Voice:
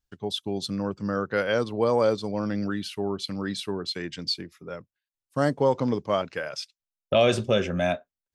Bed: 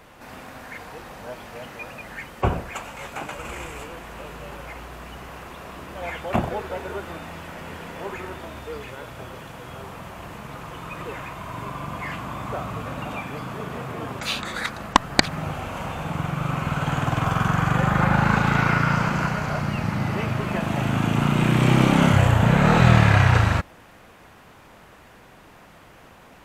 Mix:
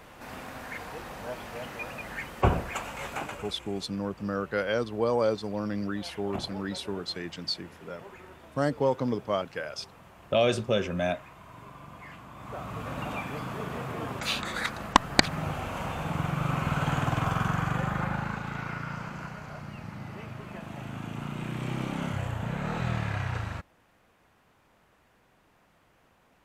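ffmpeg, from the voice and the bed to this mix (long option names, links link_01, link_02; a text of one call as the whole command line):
ffmpeg -i stem1.wav -i stem2.wav -filter_complex "[0:a]adelay=3200,volume=-3.5dB[link_01];[1:a]volume=10.5dB,afade=type=out:start_time=3.14:duration=0.4:silence=0.211349,afade=type=in:start_time=12.34:duration=0.67:silence=0.266073,afade=type=out:start_time=16.81:duration=1.57:silence=0.237137[link_02];[link_01][link_02]amix=inputs=2:normalize=0" out.wav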